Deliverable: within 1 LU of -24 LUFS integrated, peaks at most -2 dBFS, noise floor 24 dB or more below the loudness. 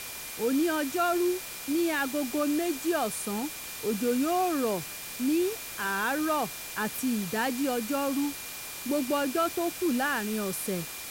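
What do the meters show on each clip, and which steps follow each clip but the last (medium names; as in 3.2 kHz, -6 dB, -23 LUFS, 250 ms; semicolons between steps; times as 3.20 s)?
steady tone 2.4 kHz; tone level -47 dBFS; noise floor -40 dBFS; noise floor target -53 dBFS; loudness -29.0 LUFS; peak level -16.5 dBFS; loudness target -24.0 LUFS
-> band-stop 2.4 kHz, Q 30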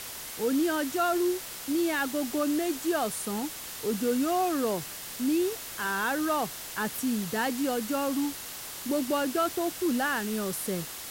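steady tone not found; noise floor -40 dBFS; noise floor target -53 dBFS
-> noise reduction 13 dB, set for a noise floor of -40 dBFS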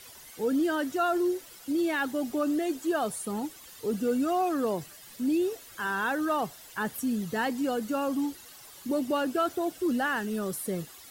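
noise floor -50 dBFS; noise floor target -54 dBFS
-> noise reduction 6 dB, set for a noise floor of -50 dBFS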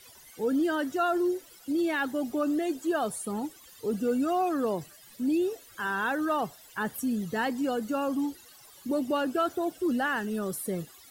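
noise floor -53 dBFS; noise floor target -54 dBFS
-> noise reduction 6 dB, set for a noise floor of -53 dBFS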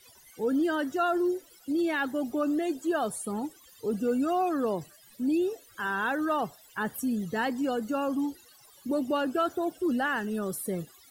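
noise floor -57 dBFS; loudness -30.0 LUFS; peak level -17.5 dBFS; loudness target -24.0 LUFS
-> trim +6 dB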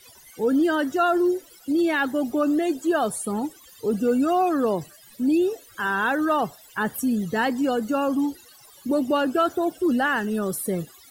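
loudness -24.0 LUFS; peak level -11.5 dBFS; noise floor -51 dBFS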